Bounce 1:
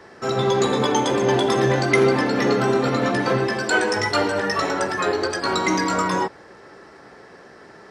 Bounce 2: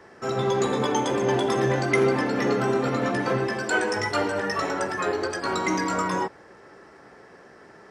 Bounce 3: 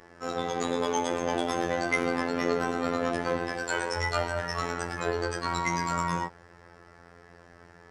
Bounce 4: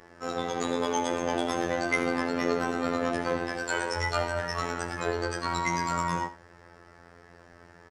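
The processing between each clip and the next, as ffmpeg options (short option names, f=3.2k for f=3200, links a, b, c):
-af "equalizer=f=4.1k:w=2.3:g=-5,volume=-4dB"
-af "asubboost=boost=4.5:cutoff=110,aeval=exprs='val(0)+0.00178*(sin(2*PI*50*n/s)+sin(2*PI*2*50*n/s)/2+sin(2*PI*3*50*n/s)/3+sin(2*PI*4*50*n/s)/4+sin(2*PI*5*50*n/s)/5)':c=same,afftfilt=real='hypot(re,im)*cos(PI*b)':imag='0':win_size=2048:overlap=0.75"
-af "aecho=1:1:78:0.178"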